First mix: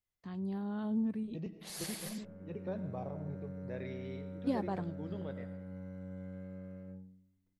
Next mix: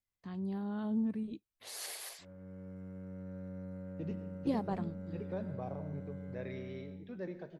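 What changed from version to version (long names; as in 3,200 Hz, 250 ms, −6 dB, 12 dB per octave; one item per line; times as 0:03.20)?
second voice: entry +2.65 s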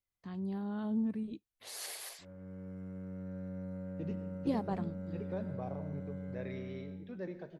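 background: send +10.5 dB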